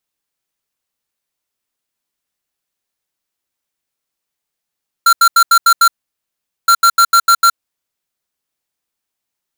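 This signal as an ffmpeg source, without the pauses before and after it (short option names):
-f lavfi -i "aevalsrc='0.398*(2*lt(mod(1370*t,1),0.5)-1)*clip(min(mod(mod(t,1.62),0.15),0.07-mod(mod(t,1.62),0.15))/0.005,0,1)*lt(mod(t,1.62),0.9)':d=3.24:s=44100"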